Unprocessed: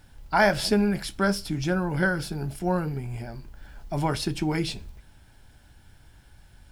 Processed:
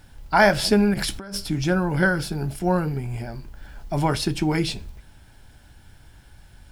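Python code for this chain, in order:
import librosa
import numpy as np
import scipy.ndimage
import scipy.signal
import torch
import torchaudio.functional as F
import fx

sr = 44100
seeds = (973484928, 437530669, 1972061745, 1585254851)

y = fx.over_compress(x, sr, threshold_db=-35.0, ratio=-1.0, at=(0.94, 1.37))
y = F.gain(torch.from_numpy(y), 4.0).numpy()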